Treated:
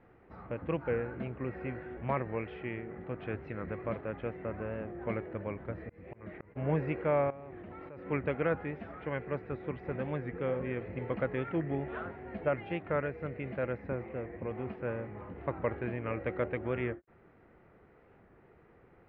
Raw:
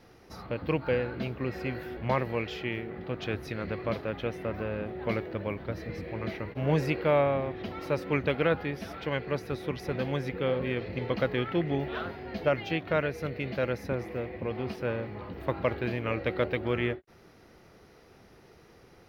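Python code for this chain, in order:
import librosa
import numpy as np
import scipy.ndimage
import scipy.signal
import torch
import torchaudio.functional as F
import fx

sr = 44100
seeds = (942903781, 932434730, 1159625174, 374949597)

y = scipy.signal.sosfilt(scipy.signal.butter(4, 2200.0, 'lowpass', fs=sr, output='sos'), x)
y = fx.auto_swell(y, sr, attack_ms=302.0, at=(5.83, 6.56))
y = fx.level_steps(y, sr, step_db=21, at=(7.3, 8.06))
y = fx.record_warp(y, sr, rpm=45.0, depth_cents=100.0)
y = y * 10.0 ** (-4.5 / 20.0)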